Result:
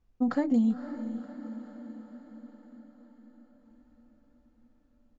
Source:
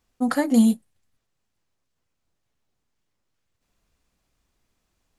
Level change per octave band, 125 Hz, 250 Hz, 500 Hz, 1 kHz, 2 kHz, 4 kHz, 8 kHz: can't be measured, −6.0 dB, −6.5 dB, −8.5 dB, −10.5 dB, below −15 dB, below −20 dB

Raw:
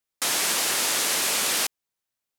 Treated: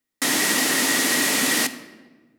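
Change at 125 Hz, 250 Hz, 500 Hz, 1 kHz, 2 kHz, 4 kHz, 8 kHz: +9.0, +15.0, +5.0, +2.5, +7.0, +2.0, +1.5 decibels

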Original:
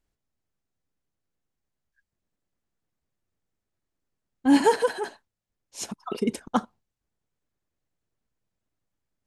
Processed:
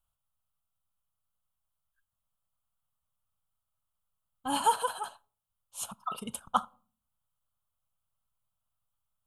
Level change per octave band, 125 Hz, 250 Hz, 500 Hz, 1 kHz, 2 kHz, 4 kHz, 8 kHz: −10.5, −18.0, −15.0, −0.5, −9.5, −2.5, −0.5 decibels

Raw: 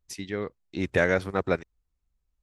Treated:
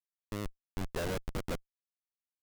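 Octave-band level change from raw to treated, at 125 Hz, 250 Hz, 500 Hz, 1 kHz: −6.5, −10.0, −13.5, −10.5 decibels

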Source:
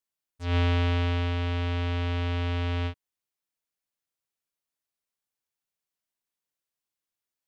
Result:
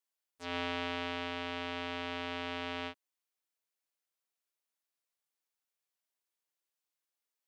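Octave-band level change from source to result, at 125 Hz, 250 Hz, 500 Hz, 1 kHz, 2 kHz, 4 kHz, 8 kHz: −26.5 dB, −9.0 dB, −6.0 dB, −3.5 dB, −3.5 dB, −3.5 dB, can't be measured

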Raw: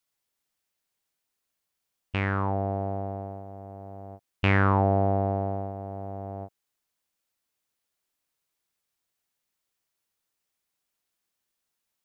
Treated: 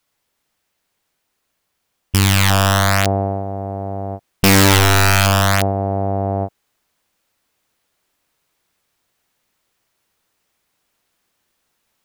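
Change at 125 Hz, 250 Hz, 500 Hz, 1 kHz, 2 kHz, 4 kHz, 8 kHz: +12.0 dB, +11.0 dB, +9.5 dB, +10.5 dB, +14.5 dB, +26.0 dB, can't be measured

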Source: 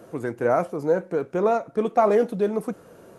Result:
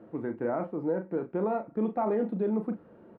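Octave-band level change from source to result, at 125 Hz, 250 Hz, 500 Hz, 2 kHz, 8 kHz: −4.5 dB, −2.0 dB, −9.0 dB, −11.5 dB, can't be measured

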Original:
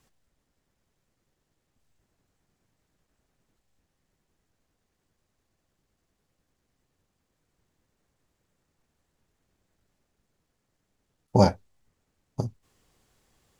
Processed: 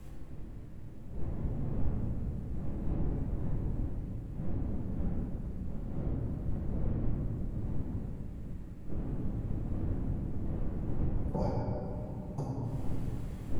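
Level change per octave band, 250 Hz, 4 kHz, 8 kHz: −1.0 dB, below −15 dB, below −10 dB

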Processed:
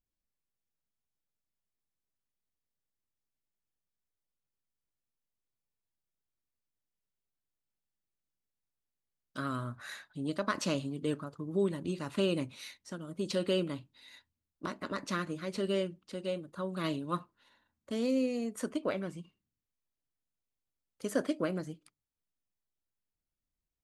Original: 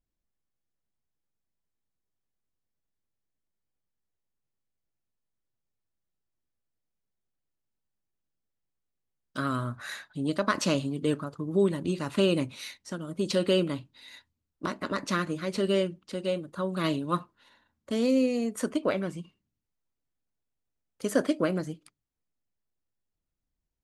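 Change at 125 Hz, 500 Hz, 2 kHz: −6.0, −6.0, −6.0 decibels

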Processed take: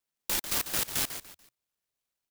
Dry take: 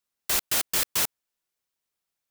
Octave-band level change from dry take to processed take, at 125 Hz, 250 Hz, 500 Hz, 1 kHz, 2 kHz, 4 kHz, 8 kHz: 0.0, −0.5, −3.5, −4.0, −4.0, −4.0, −4.5 decibels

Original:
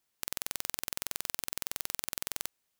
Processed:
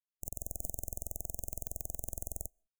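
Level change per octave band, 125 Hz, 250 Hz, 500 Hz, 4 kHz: +9.0 dB, 0.0 dB, −0.5 dB, below −30 dB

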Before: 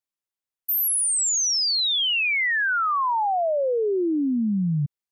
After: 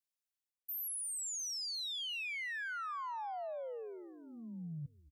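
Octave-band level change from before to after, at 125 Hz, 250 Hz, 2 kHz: can't be measured, −24.5 dB, −18.0 dB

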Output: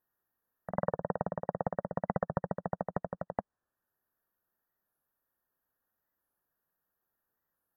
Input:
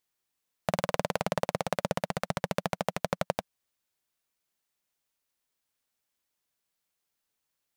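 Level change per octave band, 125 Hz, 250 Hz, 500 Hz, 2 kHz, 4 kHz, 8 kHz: −2.5 dB, −2.5 dB, −3.5 dB, −11.5 dB, below −40 dB, below −35 dB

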